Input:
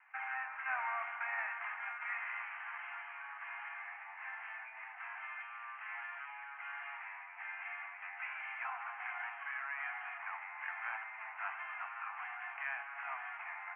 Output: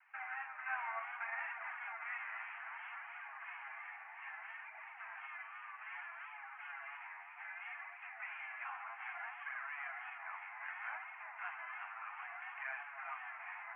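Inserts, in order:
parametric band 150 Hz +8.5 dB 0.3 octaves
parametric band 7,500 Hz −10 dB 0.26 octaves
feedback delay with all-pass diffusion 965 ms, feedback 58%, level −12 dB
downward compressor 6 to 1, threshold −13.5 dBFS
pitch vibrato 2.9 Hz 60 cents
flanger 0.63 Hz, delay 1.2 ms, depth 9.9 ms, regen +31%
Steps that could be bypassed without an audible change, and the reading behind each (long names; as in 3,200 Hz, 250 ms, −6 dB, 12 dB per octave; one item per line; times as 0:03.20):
parametric band 150 Hz: nothing at its input below 600 Hz
parametric band 7,500 Hz: nothing at its input above 3,200 Hz
downward compressor, threshold −13.5 dBFS: peak of its input −25.5 dBFS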